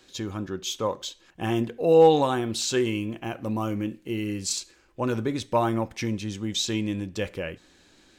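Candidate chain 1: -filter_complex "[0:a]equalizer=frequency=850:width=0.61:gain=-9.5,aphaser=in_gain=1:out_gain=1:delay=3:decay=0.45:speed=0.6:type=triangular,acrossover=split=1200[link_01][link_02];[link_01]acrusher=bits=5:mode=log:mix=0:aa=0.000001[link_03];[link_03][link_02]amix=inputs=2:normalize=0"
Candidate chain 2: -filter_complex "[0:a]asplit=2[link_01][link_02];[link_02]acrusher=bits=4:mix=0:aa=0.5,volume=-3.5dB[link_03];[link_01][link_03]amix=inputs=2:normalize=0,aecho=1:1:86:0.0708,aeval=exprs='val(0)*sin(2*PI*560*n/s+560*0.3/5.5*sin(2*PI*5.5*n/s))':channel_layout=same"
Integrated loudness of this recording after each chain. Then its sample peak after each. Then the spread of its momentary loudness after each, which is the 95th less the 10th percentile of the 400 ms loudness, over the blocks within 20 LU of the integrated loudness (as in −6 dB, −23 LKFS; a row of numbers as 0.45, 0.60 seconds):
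−29.5, −24.5 LKFS; −13.0, −3.5 dBFS; 10, 13 LU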